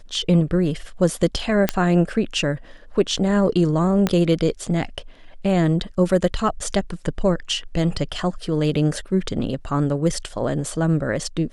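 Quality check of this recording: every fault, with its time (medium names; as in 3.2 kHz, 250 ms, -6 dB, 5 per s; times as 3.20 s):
1.69 s: pop -3 dBFS
4.07 s: pop -6 dBFS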